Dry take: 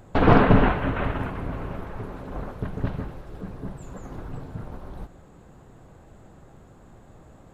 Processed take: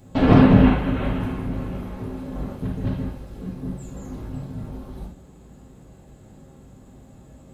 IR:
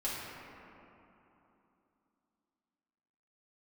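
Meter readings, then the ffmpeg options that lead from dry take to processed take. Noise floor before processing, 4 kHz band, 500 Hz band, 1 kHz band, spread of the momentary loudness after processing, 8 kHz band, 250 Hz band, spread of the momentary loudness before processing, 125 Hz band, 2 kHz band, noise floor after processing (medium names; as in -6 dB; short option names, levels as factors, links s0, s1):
-51 dBFS, +2.0 dB, 0.0 dB, -2.5 dB, 22 LU, no reading, +6.5 dB, 22 LU, +4.0 dB, -3.0 dB, -48 dBFS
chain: -filter_complex "[0:a]highpass=58,equalizer=f=1100:w=0.46:g=-12.5[s0];[1:a]atrim=start_sample=2205,atrim=end_sample=3969[s1];[s0][s1]afir=irnorm=-1:irlink=0,volume=2"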